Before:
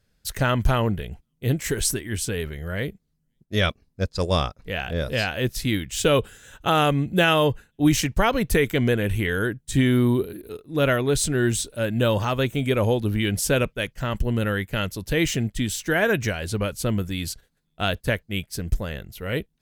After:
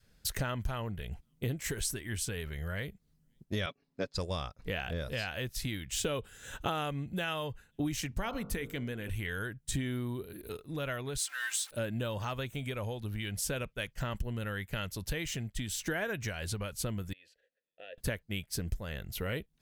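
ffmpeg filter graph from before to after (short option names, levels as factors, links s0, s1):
-filter_complex "[0:a]asettb=1/sr,asplit=3[s0][s1][s2];[s0]atrim=end=3.664[s3];[s1]atrim=start=3.66:end=4.14,asetpts=PTS-STARTPTS,afade=t=in:d=0.004:c=qsin,afade=t=out:st=0.476:d=0.004:c=qsin,acrossover=split=170 5100:gain=0.0708 1 0.224[s4][s5][s6];[s4][s5][s6]amix=inputs=3:normalize=0,aecho=1:1:7.1:0.54,atrim=end_sample=21168[s7];[s2]atrim=start=4.136[s8];[s3][s7]acrossfade=d=0.004:c1=hsin:c2=qsin[s9];[s9][s8]acrossfade=d=0.004:c1=qsin:c2=hsin,asettb=1/sr,asplit=3[s10][s11][s12];[s10]atrim=end=8.094[s13];[s11]atrim=start=8.09:end=9.1,asetpts=PTS-STARTPTS,afade=t=in:d=0.004:c=qsin,afade=t=out:st=1.006:d=0.004:c=qsin,equalizer=f=260:w=1.6:g=6.5,bandreject=f=51.29:t=h:w=4,bandreject=f=102.58:t=h:w=4,bandreject=f=153.87:t=h:w=4,bandreject=f=205.16:t=h:w=4,bandreject=f=256.45:t=h:w=4,bandreject=f=307.74:t=h:w=4,bandreject=f=359.03:t=h:w=4,bandreject=f=410.32:t=h:w=4,bandreject=f=461.61:t=h:w=4,bandreject=f=512.9:t=h:w=4,bandreject=f=564.19:t=h:w=4,bandreject=f=615.48:t=h:w=4,bandreject=f=666.77:t=h:w=4,bandreject=f=718.06:t=h:w=4,bandreject=f=769.35:t=h:w=4,bandreject=f=820.64:t=h:w=4,bandreject=f=871.93:t=h:w=4,bandreject=f=923.22:t=h:w=4,bandreject=f=974.51:t=h:w=4,bandreject=f=1025.8:t=h:w=4,bandreject=f=1077.09:t=h:w=4,bandreject=f=1128.38:t=h:w=4,bandreject=f=1179.67:t=h:w=4,bandreject=f=1230.96:t=h:w=4,bandreject=f=1282.25:t=h:w=4,bandreject=f=1333.54:t=h:w=4,bandreject=f=1384.83:t=h:w=4,bandreject=f=1436.12:t=h:w=4,bandreject=f=1487.41:t=h:w=4[s14];[s12]atrim=start=9.096[s15];[s13][s14]acrossfade=d=0.004:c1=hsin:c2=qsin[s16];[s16][s15]acrossfade=d=0.004:c1=qsin:c2=hsin,asettb=1/sr,asplit=3[s17][s18][s19];[s17]atrim=end=11.184[s20];[s18]atrim=start=11.18:end=11.71,asetpts=PTS-STARTPTS,afade=t=in:d=0.004:c=qsin,afade=t=out:st=0.526:d=0.004:c=qsin,aeval=exprs='val(0)+0.5*0.0168*sgn(val(0))':c=same,highpass=f=1100:w=0.5412,highpass=f=1100:w=1.3066,aecho=1:1:3.8:0.7,atrim=end_sample=23373[s21];[s19]atrim=start=11.706[s22];[s20][s21]acrossfade=d=0.004:c1=hsin:c2=qsin[s23];[s23][s22]acrossfade=d=0.004:c1=qsin:c2=hsin,asettb=1/sr,asplit=3[s24][s25][s26];[s24]atrim=end=17.134[s27];[s25]atrim=start=17.13:end=17.98,asetpts=PTS-STARTPTS,afade=t=in:d=0.004:c=qsin,afade=t=out:st=0.846:d=0.004:c=qsin,equalizer=f=130:t=o:w=1.8:g=-12,acompressor=threshold=0.00562:ratio=2:attack=3.2:release=140:knee=1:detection=peak,asplit=3[s28][s29][s30];[s28]bandpass=f=530:t=q:w=8,volume=1[s31];[s29]bandpass=f=1840:t=q:w=8,volume=0.501[s32];[s30]bandpass=f=2480:t=q:w=8,volume=0.355[s33];[s31][s32][s33]amix=inputs=3:normalize=0[s34];[s26]atrim=start=17.976[s35];[s27][s34]acrossfade=d=0.004:c1=hsin:c2=qsin[s36];[s36][s35]acrossfade=d=0.004:c1=qsin:c2=hsin,acompressor=threshold=0.0178:ratio=5,adynamicequalizer=threshold=0.00282:dfrequency=320:dqfactor=0.79:tfrequency=320:tqfactor=0.79:attack=5:release=100:ratio=0.375:range=4:mode=cutabove:tftype=bell,volume=1.33"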